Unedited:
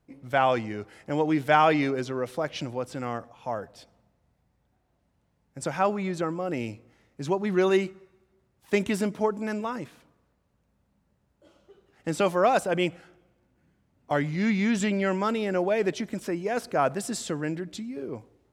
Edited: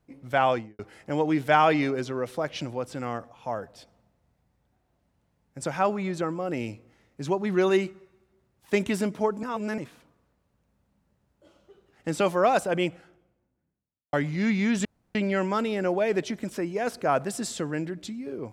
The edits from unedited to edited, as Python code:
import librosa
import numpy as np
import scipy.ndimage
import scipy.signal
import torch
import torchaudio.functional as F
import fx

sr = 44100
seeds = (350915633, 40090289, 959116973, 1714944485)

y = fx.studio_fade_out(x, sr, start_s=0.48, length_s=0.31)
y = fx.studio_fade_out(y, sr, start_s=12.65, length_s=1.48)
y = fx.edit(y, sr, fx.reverse_span(start_s=9.43, length_s=0.35),
    fx.insert_room_tone(at_s=14.85, length_s=0.3), tone=tone)